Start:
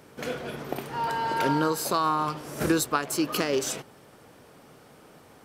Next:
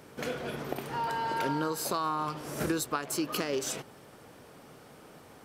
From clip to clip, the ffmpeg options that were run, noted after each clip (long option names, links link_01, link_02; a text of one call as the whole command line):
ffmpeg -i in.wav -af "acompressor=threshold=-32dB:ratio=2" out.wav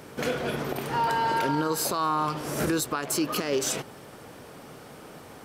ffmpeg -i in.wav -af "alimiter=limit=-24dB:level=0:latency=1:release=31,volume=7dB" out.wav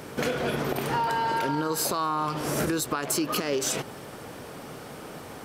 ffmpeg -i in.wav -af "acompressor=threshold=-28dB:ratio=6,volume=4.5dB" out.wav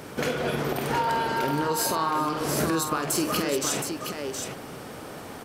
ffmpeg -i in.wav -af "aecho=1:1:49|385|719:0.376|0.106|0.501" out.wav